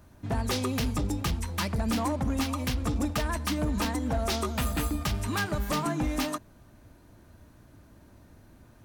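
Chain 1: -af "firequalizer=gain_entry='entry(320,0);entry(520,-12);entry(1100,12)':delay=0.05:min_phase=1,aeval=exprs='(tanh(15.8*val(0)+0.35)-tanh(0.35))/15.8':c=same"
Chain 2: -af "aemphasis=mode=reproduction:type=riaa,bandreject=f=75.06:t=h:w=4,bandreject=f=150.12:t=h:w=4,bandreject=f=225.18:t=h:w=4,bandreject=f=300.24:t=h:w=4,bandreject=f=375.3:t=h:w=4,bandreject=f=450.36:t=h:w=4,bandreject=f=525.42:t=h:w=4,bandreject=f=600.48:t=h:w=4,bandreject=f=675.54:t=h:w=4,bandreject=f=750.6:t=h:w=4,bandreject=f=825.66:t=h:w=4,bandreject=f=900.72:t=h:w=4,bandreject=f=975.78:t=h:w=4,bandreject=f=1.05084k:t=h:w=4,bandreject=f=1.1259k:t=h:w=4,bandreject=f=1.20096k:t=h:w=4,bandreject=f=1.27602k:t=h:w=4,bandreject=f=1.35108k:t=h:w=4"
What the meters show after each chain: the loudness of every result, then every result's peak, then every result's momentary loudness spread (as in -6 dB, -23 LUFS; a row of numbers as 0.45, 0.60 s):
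-28.5, -20.5 LUFS; -21.5, -4.5 dBFS; 2, 4 LU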